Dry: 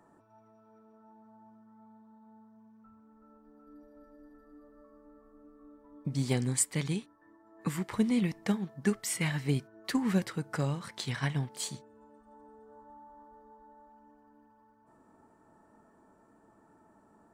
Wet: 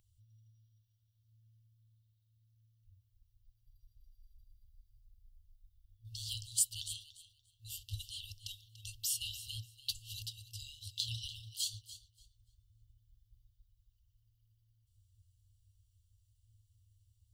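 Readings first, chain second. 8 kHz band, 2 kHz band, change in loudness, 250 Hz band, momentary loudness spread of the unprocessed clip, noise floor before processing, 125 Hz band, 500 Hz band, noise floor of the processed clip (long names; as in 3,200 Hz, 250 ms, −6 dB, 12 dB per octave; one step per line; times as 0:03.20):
−2.0 dB, −17.5 dB, −7.5 dB, below −40 dB, 9 LU, −64 dBFS, −15.0 dB, below −40 dB, −75 dBFS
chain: octave-band graphic EQ 125/2,000/8,000 Hz +5/−11/−11 dB
feedback echo with a high-pass in the loop 290 ms, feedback 18%, level −15 dB
brick-wall band-stop 110–2,700 Hz
level +8 dB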